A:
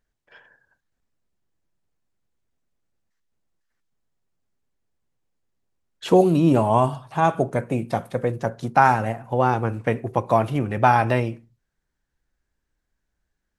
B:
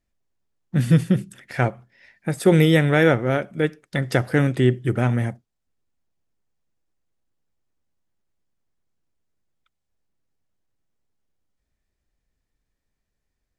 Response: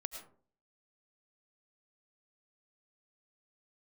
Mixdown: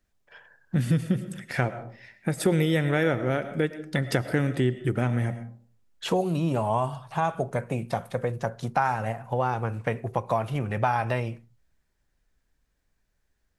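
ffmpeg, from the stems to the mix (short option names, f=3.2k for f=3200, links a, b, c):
-filter_complex "[0:a]equalizer=f=300:t=o:w=0.77:g=-8,volume=0dB[a];[1:a]volume=-1.5dB,asplit=2[b][c];[c]volume=-3dB[d];[2:a]atrim=start_sample=2205[e];[d][e]afir=irnorm=-1:irlink=0[f];[a][b][f]amix=inputs=3:normalize=0,acompressor=threshold=-24dB:ratio=2.5"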